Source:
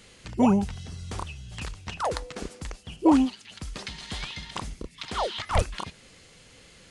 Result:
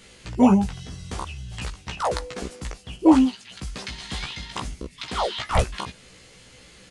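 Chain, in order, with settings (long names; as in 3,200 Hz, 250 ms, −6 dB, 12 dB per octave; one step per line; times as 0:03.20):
double-tracking delay 16 ms −3 dB
level +1.5 dB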